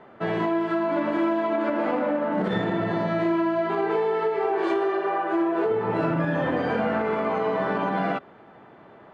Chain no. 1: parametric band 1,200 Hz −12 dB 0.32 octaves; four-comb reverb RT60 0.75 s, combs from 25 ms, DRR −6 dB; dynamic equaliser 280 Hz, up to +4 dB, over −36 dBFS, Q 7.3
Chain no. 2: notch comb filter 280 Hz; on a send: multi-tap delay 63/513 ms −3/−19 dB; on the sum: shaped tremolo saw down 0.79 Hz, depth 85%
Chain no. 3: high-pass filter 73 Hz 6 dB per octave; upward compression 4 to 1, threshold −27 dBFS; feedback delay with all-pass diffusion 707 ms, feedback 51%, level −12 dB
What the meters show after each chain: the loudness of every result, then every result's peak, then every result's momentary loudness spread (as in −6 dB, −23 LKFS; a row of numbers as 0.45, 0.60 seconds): −19.0, −27.5, −25.0 LKFS; −5.0, −11.5, −12.0 dBFS; 6, 8, 3 LU